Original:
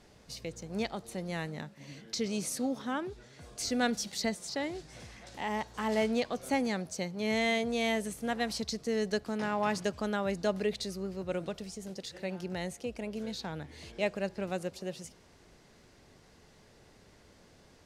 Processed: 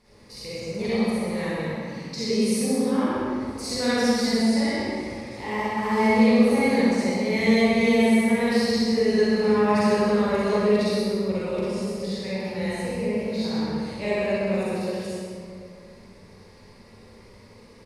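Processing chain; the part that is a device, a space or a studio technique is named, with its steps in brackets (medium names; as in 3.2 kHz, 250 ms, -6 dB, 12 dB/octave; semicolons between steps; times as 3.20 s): tunnel (flutter echo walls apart 10.8 m, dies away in 0.54 s; reverberation RT60 2.3 s, pre-delay 38 ms, DRR -10.5 dB); rippled EQ curve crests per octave 0.9, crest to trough 8 dB; delay 129 ms -7.5 dB; trim -4.5 dB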